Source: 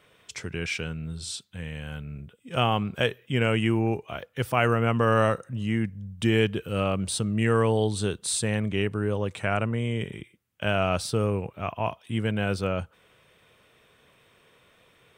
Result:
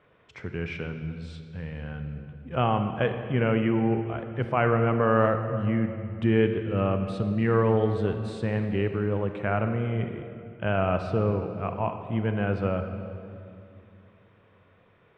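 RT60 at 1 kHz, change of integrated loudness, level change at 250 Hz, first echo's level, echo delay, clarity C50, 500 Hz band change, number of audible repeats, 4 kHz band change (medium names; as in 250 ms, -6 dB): 2.4 s, 0.0 dB, +1.0 dB, no echo, no echo, 7.5 dB, +1.0 dB, no echo, -10.5 dB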